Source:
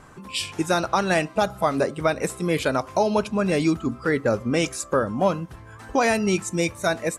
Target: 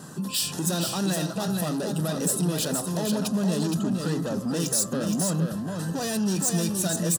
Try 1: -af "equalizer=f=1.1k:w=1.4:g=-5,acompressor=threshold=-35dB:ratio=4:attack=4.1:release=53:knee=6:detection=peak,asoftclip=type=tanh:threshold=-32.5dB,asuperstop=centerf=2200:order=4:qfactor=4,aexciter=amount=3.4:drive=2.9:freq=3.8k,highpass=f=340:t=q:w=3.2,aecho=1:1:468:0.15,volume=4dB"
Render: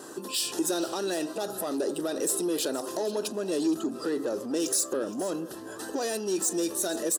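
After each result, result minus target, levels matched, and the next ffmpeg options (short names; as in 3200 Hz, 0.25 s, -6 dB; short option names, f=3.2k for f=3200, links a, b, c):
125 Hz band -17.5 dB; echo-to-direct -11.5 dB; compressor: peak gain reduction +5.5 dB
-af "equalizer=f=1.1k:w=1.4:g=-5,acompressor=threshold=-35dB:ratio=4:attack=4.1:release=53:knee=6:detection=peak,asoftclip=type=tanh:threshold=-32.5dB,asuperstop=centerf=2200:order=4:qfactor=4,aexciter=amount=3.4:drive=2.9:freq=3.8k,highpass=f=170:t=q:w=3.2,aecho=1:1:468:0.15,volume=4dB"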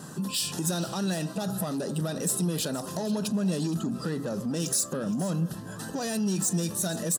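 echo-to-direct -11.5 dB; compressor: peak gain reduction +5.5 dB
-af "equalizer=f=1.1k:w=1.4:g=-5,acompressor=threshold=-35dB:ratio=4:attack=4.1:release=53:knee=6:detection=peak,asoftclip=type=tanh:threshold=-32.5dB,asuperstop=centerf=2200:order=4:qfactor=4,aexciter=amount=3.4:drive=2.9:freq=3.8k,highpass=f=170:t=q:w=3.2,aecho=1:1:468:0.562,volume=4dB"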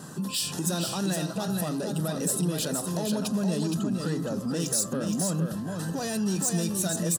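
compressor: peak gain reduction +5.5 dB
-af "equalizer=f=1.1k:w=1.4:g=-5,acompressor=threshold=-28dB:ratio=4:attack=4.1:release=53:knee=6:detection=peak,asoftclip=type=tanh:threshold=-32.5dB,asuperstop=centerf=2200:order=4:qfactor=4,aexciter=amount=3.4:drive=2.9:freq=3.8k,highpass=f=170:t=q:w=3.2,aecho=1:1:468:0.562,volume=4dB"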